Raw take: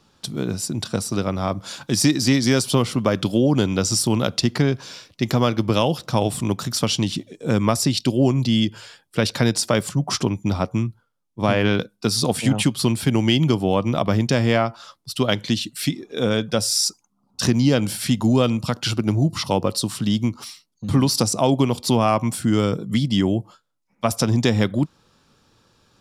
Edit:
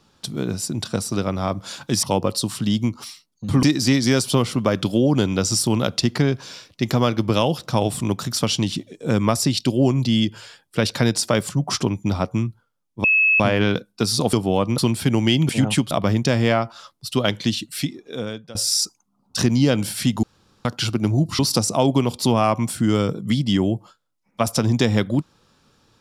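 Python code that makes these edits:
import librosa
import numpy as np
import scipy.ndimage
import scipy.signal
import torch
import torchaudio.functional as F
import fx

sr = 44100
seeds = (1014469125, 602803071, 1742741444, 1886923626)

y = fx.edit(x, sr, fx.insert_tone(at_s=11.44, length_s=0.36, hz=2590.0, db=-13.0),
    fx.swap(start_s=12.37, length_s=0.42, other_s=13.5, other_length_s=0.45),
    fx.fade_out_to(start_s=15.68, length_s=0.91, floor_db=-21.0),
    fx.room_tone_fill(start_s=18.27, length_s=0.42),
    fx.move(start_s=19.43, length_s=1.6, to_s=2.03), tone=tone)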